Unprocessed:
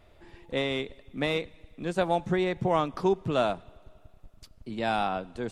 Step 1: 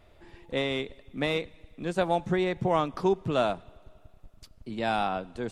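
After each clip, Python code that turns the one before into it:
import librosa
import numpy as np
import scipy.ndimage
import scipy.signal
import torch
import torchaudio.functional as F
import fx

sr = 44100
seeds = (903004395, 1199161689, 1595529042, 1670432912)

y = x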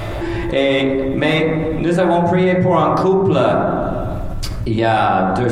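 y = fx.rev_fdn(x, sr, rt60_s=1.1, lf_ratio=1.2, hf_ratio=0.25, size_ms=53.0, drr_db=-2.5)
y = fx.env_flatten(y, sr, amount_pct=70)
y = y * librosa.db_to_amplitude(2.5)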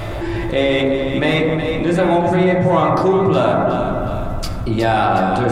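y = fx.echo_split(x, sr, split_hz=900.0, low_ms=263, high_ms=366, feedback_pct=52, wet_db=-8)
y = y * librosa.db_to_amplitude(-1.0)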